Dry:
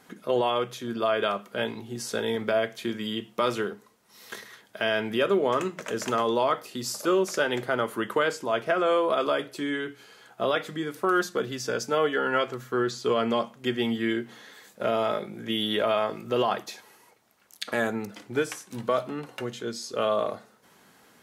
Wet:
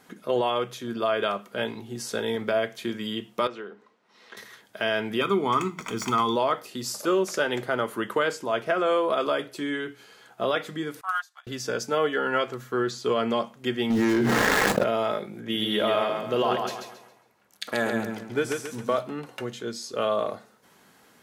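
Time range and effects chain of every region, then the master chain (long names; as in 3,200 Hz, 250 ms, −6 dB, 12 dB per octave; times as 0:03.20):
0:03.47–0:04.37: band-pass filter 220–3,300 Hz + downward compressor 1.5 to 1, threshold −49 dBFS
0:05.21–0:06.36: running median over 3 samples + comb filter 0.9 ms, depth 82%
0:11.01–0:11.47: Butterworth high-pass 710 Hz 72 dB per octave + expander for the loud parts 2.5 to 1, over −37 dBFS
0:13.90–0:14.84: running median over 15 samples + leveller curve on the samples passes 2 + envelope flattener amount 100%
0:15.40–0:18.98: repeating echo 136 ms, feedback 39%, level −4.5 dB + one half of a high-frequency compander decoder only
whole clip: no processing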